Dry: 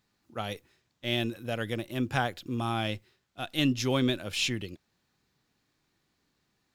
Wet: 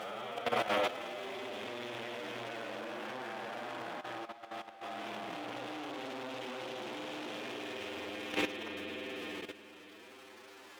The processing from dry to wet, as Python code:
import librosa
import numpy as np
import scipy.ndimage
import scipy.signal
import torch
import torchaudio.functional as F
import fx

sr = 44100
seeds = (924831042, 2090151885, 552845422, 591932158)

p1 = fx.spec_blur(x, sr, span_ms=853.0)
p2 = fx.rev_spring(p1, sr, rt60_s=3.2, pass_ms=(33,), chirp_ms=80, drr_db=-3.5)
p3 = fx.dmg_crackle(p2, sr, seeds[0], per_s=390.0, level_db=-48.0)
p4 = fx.chorus_voices(p3, sr, voices=2, hz=1.0, base_ms=12, depth_ms=4.6, mix_pct=25)
p5 = fx.quant_companded(p4, sr, bits=2)
p6 = p4 + (p5 * librosa.db_to_amplitude(-11.0))
p7 = fx.doubler(p6, sr, ms=23.0, db=-8.0)
p8 = fx.stretch_vocoder(p7, sr, factor=1.6)
p9 = fx.tube_stage(p8, sr, drive_db=37.0, bias=0.25)
p10 = scipy.signal.sosfilt(scipy.signal.butter(2, 490.0, 'highpass', fs=sr, output='sos'), p9)
p11 = fx.over_compress(p10, sr, threshold_db=-49.0, ratio=-0.5)
p12 = fx.lowpass(p11, sr, hz=1600.0, slope=6)
p13 = fx.level_steps(p12, sr, step_db=12)
y = p13 * librosa.db_to_amplitude(18.0)